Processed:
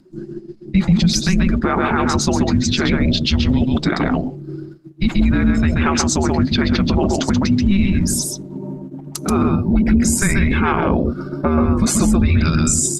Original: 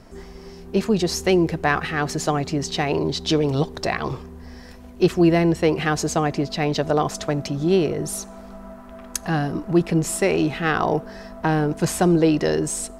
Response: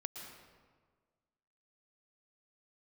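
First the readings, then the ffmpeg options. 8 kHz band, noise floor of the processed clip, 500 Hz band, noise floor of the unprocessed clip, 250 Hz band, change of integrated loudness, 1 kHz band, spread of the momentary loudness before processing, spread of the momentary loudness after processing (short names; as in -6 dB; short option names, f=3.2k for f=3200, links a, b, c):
+8.5 dB, -36 dBFS, -2.5 dB, -41 dBFS, +6.5 dB, +5.0 dB, +2.0 dB, 20 LU, 13 LU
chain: -filter_complex "[0:a]afreqshift=-390,asplit=2[a][b];[b]acompressor=threshold=-30dB:ratio=16,volume=-2dB[c];[a][c]amix=inputs=2:normalize=0,lowshelf=f=76:g=-8,agate=range=-19dB:threshold=-34dB:ratio=16:detection=peak,asoftclip=type=hard:threshold=-7dB,acompressor=mode=upward:threshold=-38dB:ratio=2.5,bandreject=f=5.7k:w=28,afftdn=nr=19:nf=-34,equalizer=f=170:t=o:w=0.22:g=9,aecho=1:1:132:0.596,alimiter=level_in=13.5dB:limit=-1dB:release=50:level=0:latency=1,volume=-5.5dB" -ar 48000 -c:a libopus -b:a 16k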